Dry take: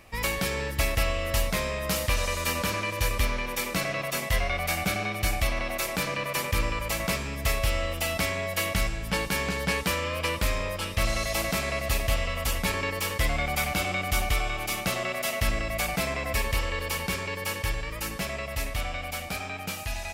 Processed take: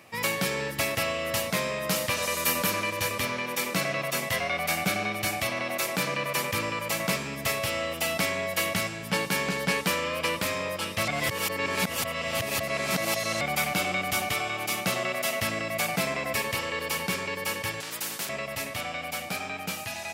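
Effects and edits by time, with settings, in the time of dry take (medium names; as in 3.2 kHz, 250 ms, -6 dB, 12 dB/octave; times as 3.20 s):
2.22–2.90 s: peaking EQ 13 kHz +8.5 dB 0.78 oct
11.08–13.41 s: reverse
17.80–18.29 s: spectrum-flattening compressor 4:1
whole clip: high-pass 120 Hz 24 dB/octave; trim +1 dB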